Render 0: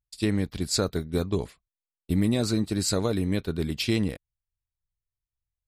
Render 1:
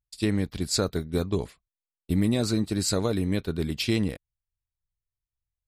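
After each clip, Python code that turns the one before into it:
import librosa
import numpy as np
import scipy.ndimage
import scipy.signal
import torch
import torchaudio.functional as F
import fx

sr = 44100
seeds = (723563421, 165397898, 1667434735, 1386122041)

y = x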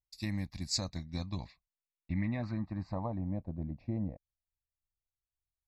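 y = fx.fixed_phaser(x, sr, hz=2100.0, stages=8)
y = fx.filter_sweep_lowpass(y, sr, from_hz=12000.0, to_hz=590.0, start_s=0.36, end_s=3.49, q=2.0)
y = y * librosa.db_to_amplitude(-7.0)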